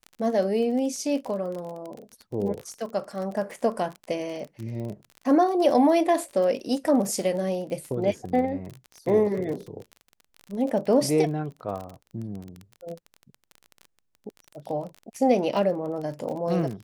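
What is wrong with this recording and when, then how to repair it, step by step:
surface crackle 31 per second −32 dBFS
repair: click removal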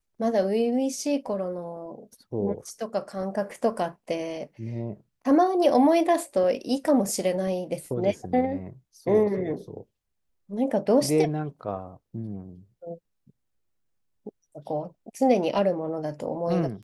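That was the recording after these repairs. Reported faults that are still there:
none of them is left

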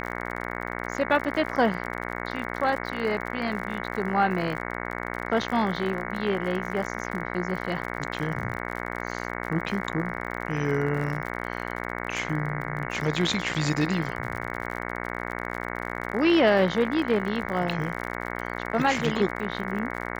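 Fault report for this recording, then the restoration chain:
mains buzz 60 Hz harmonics 37 −33 dBFS
surface crackle 49 per second −33 dBFS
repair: click removal
hum removal 60 Hz, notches 37

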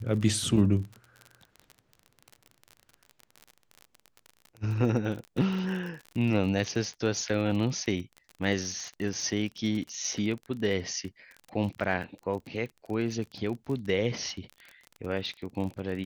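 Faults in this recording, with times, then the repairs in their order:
surface crackle 36 per second −35 dBFS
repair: click removal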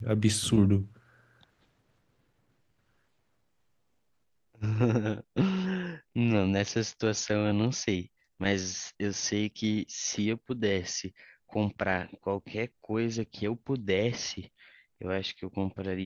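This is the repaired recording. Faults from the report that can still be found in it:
none of them is left

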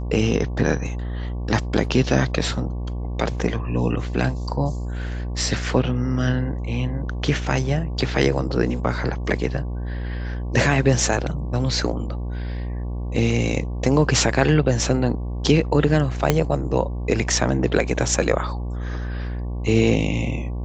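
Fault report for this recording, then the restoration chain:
mains buzz 60 Hz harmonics 19 −27 dBFS
0:16.30: click −2 dBFS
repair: click removal
hum removal 60 Hz, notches 19

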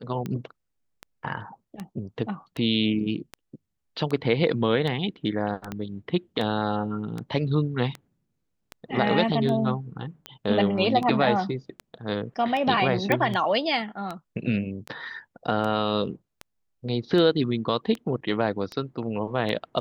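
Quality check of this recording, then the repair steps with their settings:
scratch tick 78 rpm −19 dBFS
0:05.72: click −18 dBFS
0:13.12: click −10 dBFS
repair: click removal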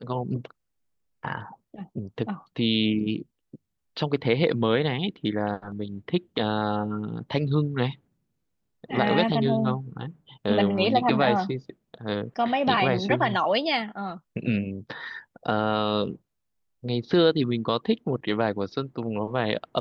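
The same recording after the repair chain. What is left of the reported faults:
0:05.72: click

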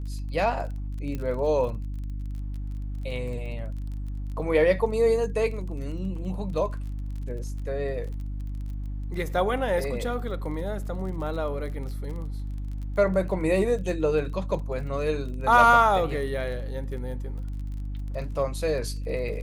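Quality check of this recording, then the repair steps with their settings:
surface crackle 26 per second −36 dBFS
mains hum 50 Hz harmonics 6 −32 dBFS
0:01.15: click −20 dBFS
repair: click removal
hum removal 50 Hz, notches 6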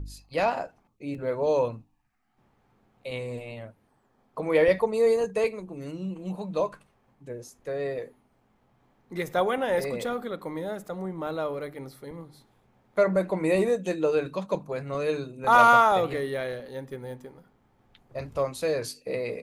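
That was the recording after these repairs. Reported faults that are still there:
0:01.15: click

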